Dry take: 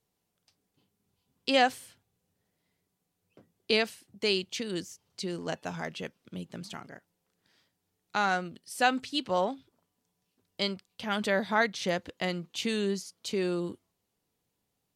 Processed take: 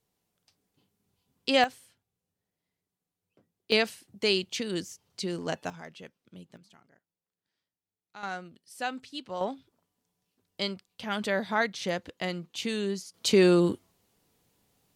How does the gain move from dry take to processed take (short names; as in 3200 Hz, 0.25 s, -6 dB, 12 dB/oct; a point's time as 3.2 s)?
+1 dB
from 1.64 s -8 dB
from 3.72 s +2 dB
from 5.7 s -8.5 dB
from 6.57 s -17 dB
from 8.23 s -8 dB
from 9.41 s -1 dB
from 13.14 s +10 dB